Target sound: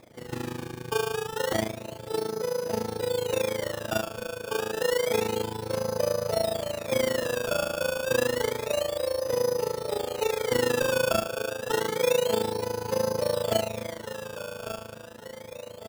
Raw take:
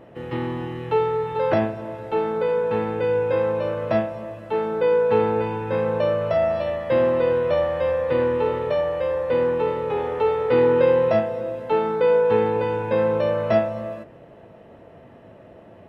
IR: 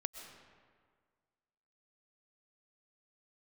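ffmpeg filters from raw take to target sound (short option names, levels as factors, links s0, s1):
-af "aecho=1:1:1161|2322|3483|4644|5805:0.316|0.152|0.0729|0.035|0.0168,acrusher=samples=15:mix=1:aa=0.000001:lfo=1:lforange=15:lforate=0.29,tremolo=f=27:d=0.857,volume=0.668"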